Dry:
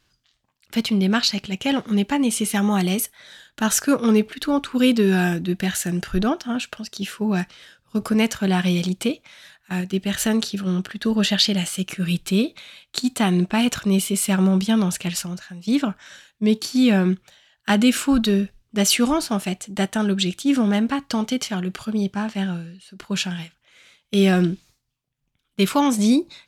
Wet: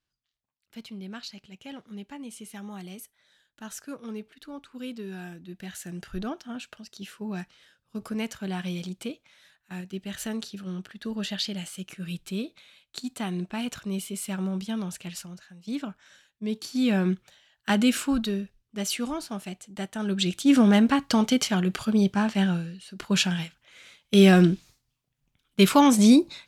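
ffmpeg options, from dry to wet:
ffmpeg -i in.wav -af "volume=7.5dB,afade=type=in:start_time=5.41:duration=0.72:silence=0.398107,afade=type=in:start_time=16.48:duration=0.62:silence=0.446684,afade=type=out:start_time=17.93:duration=0.5:silence=0.473151,afade=type=in:start_time=19.95:duration=0.64:silence=0.237137" out.wav

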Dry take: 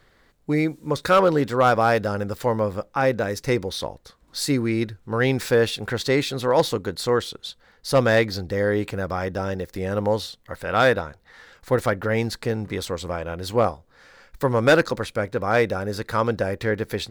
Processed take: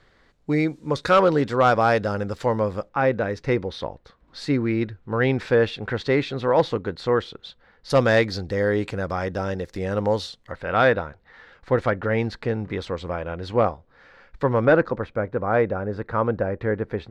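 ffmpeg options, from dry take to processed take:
ffmpeg -i in.wav -af "asetnsamples=nb_out_samples=441:pad=0,asendcmd='2.89 lowpass f 2900;7.9 lowpass f 7100;10.52 lowpass f 3100;14.65 lowpass f 1500',lowpass=6300" out.wav

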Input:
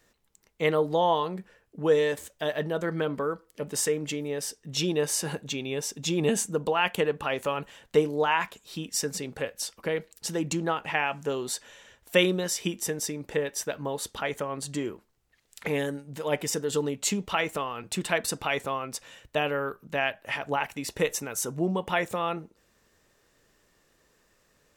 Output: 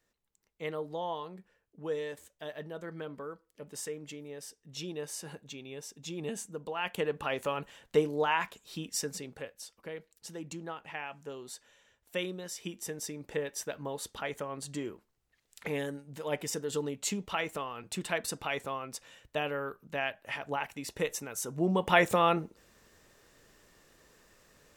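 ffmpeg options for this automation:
ffmpeg -i in.wav -af "volume=13dB,afade=type=in:start_time=6.68:duration=0.54:silence=0.375837,afade=type=out:start_time=8.86:duration=0.72:silence=0.354813,afade=type=in:start_time=12.39:duration=0.95:silence=0.446684,afade=type=in:start_time=21.49:duration=0.53:silence=0.316228" out.wav

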